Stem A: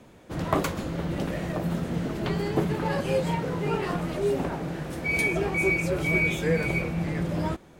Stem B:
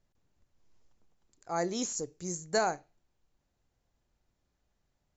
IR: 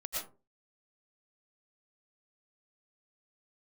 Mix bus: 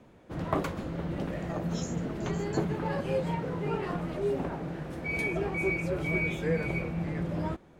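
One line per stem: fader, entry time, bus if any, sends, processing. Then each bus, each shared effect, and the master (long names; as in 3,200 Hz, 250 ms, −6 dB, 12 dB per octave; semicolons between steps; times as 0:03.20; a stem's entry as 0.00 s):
−4.0 dB, 0.00 s, no send, high-shelf EQ 3,700 Hz −10 dB
−1.5 dB, 0.00 s, no send, Butterworth high-pass 390 Hz; downward compressor, threshold −36 dBFS, peak gain reduction 12 dB; tremolo along a rectified sine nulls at 2.8 Hz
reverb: not used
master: no processing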